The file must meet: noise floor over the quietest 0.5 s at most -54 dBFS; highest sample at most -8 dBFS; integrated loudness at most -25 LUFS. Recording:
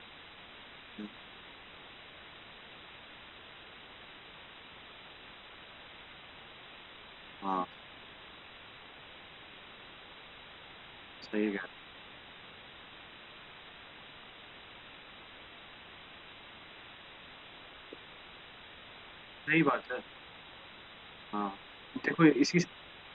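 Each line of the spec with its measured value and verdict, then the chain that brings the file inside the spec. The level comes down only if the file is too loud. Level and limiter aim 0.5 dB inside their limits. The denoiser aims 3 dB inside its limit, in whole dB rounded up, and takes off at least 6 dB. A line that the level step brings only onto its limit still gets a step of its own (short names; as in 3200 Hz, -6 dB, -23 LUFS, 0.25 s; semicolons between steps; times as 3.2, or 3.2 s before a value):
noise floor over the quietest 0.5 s -52 dBFS: fail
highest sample -11.5 dBFS: OK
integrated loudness -33.0 LUFS: OK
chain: denoiser 6 dB, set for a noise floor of -52 dBFS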